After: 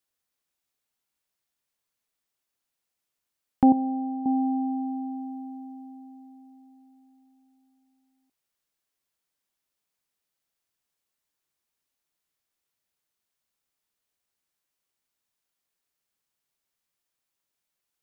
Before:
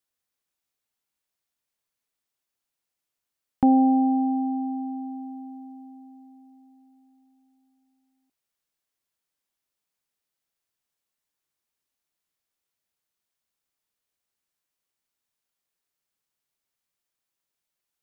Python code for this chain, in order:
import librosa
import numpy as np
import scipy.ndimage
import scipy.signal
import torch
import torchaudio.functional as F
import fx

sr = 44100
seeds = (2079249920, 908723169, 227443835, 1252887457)

y = fx.comb_fb(x, sr, f0_hz=210.0, decay_s=1.1, harmonics='all', damping=0.0, mix_pct=70, at=(3.72, 4.26))
y = F.gain(torch.from_numpy(y), 1.0).numpy()